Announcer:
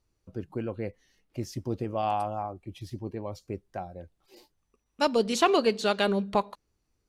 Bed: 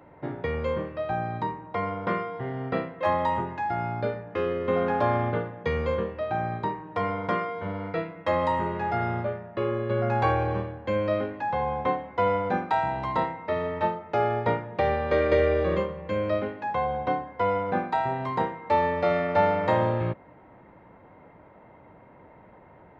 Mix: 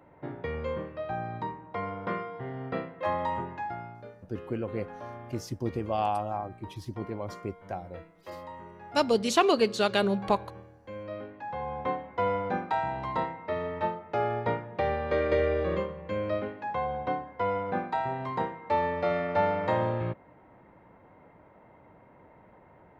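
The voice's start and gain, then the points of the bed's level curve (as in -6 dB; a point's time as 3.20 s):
3.95 s, 0.0 dB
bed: 3.62 s -5 dB
4.04 s -18 dB
10.62 s -18 dB
11.97 s -4 dB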